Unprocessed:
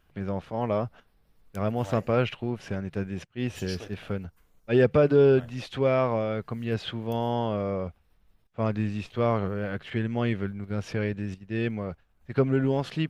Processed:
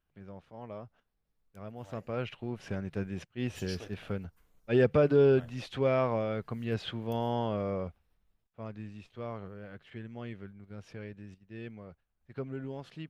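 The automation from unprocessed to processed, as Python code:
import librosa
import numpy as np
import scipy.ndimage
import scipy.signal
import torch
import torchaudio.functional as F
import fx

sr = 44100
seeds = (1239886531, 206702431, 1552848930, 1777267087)

y = fx.gain(x, sr, db=fx.line((1.73, -16.5), (2.71, -4.0), (7.82, -4.0), (8.6, -15.0)))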